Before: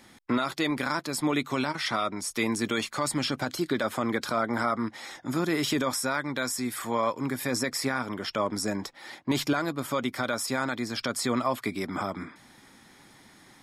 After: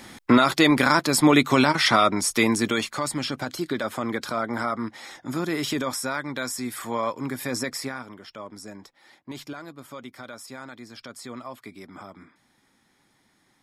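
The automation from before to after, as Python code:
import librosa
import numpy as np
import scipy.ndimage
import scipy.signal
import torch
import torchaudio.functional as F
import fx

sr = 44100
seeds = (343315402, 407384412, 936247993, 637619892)

y = fx.gain(x, sr, db=fx.line((2.14, 10.0), (3.14, 0.0), (7.71, 0.0), (8.22, -11.0)))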